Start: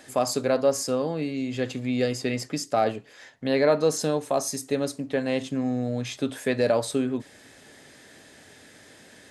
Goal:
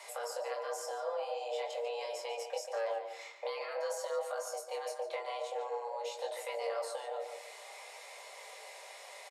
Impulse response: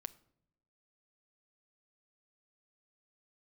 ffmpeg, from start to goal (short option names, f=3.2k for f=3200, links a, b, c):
-filter_complex "[0:a]afftfilt=real='re*lt(hypot(re,im),0.251)':imag='im*lt(hypot(re,im),0.251)':win_size=1024:overlap=0.75,aecho=1:1:4.7:0.3,acrossover=split=300[a][b];[b]acompressor=threshold=-45dB:ratio=5[c];[a][c]amix=inputs=2:normalize=0,afreqshift=350,flanger=delay=20:depth=5.8:speed=0.47,asplit=2[d][e];[e]adelay=145,lowpass=f=3.1k:p=1,volume=-7dB,asplit=2[f][g];[g]adelay=145,lowpass=f=3.1k:p=1,volume=0.3,asplit=2[h][i];[i]adelay=145,lowpass=f=3.1k:p=1,volume=0.3,asplit=2[j][k];[k]adelay=145,lowpass=f=3.1k:p=1,volume=0.3[l];[f][h][j][l]amix=inputs=4:normalize=0[m];[d][m]amix=inputs=2:normalize=0,volume=3dB"